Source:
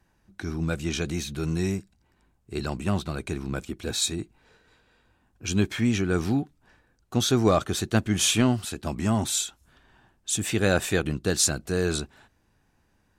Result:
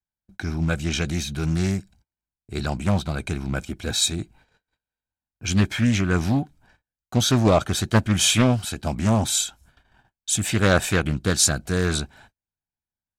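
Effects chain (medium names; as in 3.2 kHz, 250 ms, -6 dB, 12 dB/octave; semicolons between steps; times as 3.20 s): comb 1.3 ms, depth 39%; gate -55 dBFS, range -35 dB; loudspeaker Doppler distortion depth 0.4 ms; trim +3.5 dB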